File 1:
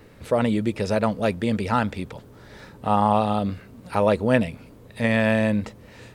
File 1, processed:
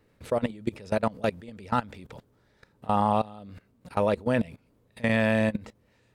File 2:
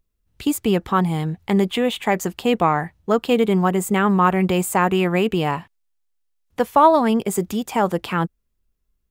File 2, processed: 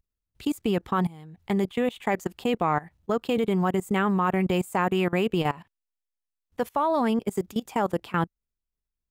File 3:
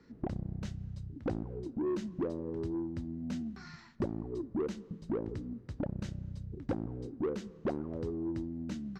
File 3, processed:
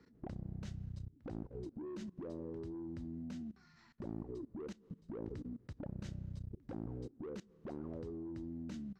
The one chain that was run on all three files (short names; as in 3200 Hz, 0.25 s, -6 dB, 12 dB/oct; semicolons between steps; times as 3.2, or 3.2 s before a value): level quantiser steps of 21 dB; gain -2 dB